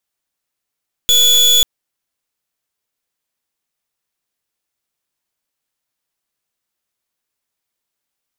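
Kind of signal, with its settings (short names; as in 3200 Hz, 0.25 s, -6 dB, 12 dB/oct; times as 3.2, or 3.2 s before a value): pulse 3430 Hz, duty 34% -10.5 dBFS 0.54 s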